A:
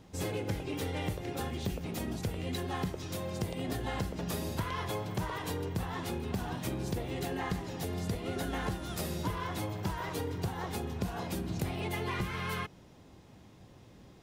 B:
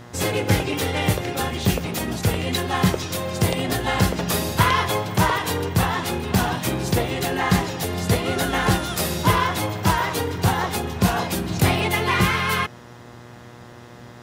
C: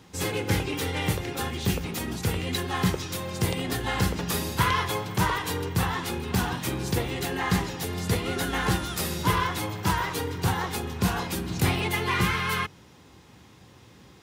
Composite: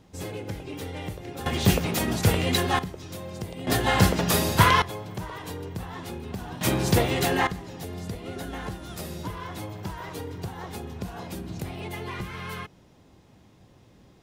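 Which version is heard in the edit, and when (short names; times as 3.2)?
A
1.46–2.79 from B
3.67–4.82 from B
6.61–7.47 from B
not used: C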